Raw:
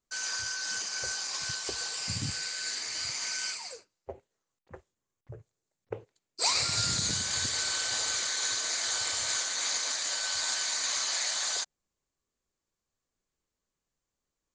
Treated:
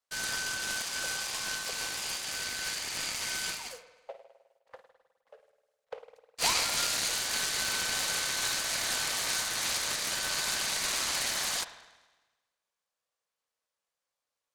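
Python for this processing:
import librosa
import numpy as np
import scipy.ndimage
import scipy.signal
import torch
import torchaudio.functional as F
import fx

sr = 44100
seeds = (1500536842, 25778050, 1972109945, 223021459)

y = scipy.signal.sosfilt(scipy.signal.butter(12, 470.0, 'highpass', fs=sr, output='sos'), x)
y = fx.rev_spring(y, sr, rt60_s=1.2, pass_ms=(51,), chirp_ms=55, drr_db=7.5)
y = fx.noise_mod_delay(y, sr, seeds[0], noise_hz=1800.0, depth_ms=0.032)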